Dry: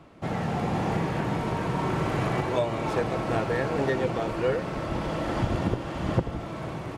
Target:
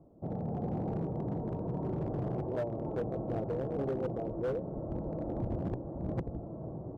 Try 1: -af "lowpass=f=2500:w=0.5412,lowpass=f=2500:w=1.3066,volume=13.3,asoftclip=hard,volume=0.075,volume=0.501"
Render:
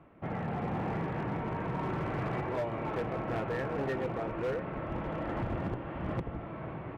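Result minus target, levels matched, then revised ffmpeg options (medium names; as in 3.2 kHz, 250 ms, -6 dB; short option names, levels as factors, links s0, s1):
2 kHz band +14.0 dB
-af "lowpass=f=680:w=0.5412,lowpass=f=680:w=1.3066,volume=13.3,asoftclip=hard,volume=0.075,volume=0.501"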